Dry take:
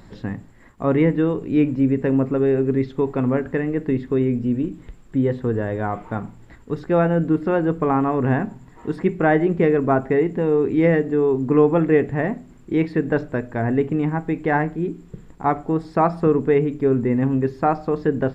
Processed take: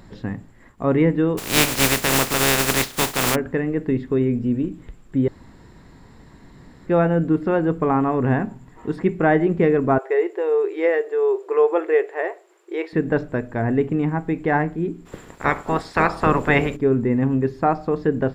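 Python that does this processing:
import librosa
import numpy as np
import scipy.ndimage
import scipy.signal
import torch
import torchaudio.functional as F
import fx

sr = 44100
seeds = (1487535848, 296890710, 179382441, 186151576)

y = fx.spec_flatten(x, sr, power=0.24, at=(1.37, 3.34), fade=0.02)
y = fx.brickwall_highpass(y, sr, low_hz=330.0, at=(9.98, 12.93))
y = fx.spec_clip(y, sr, under_db=24, at=(15.05, 16.75), fade=0.02)
y = fx.edit(y, sr, fx.room_tone_fill(start_s=5.28, length_s=1.58), tone=tone)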